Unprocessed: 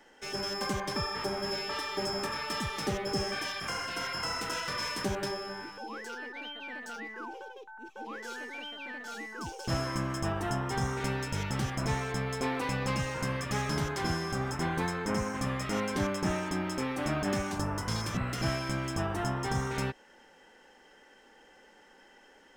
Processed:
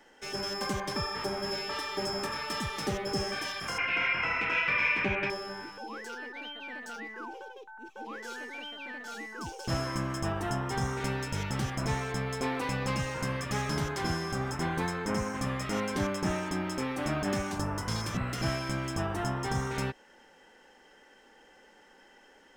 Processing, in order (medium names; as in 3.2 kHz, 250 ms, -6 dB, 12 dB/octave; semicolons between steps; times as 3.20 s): 3.78–5.30 s: resonant low-pass 2.4 kHz, resonance Q 9.8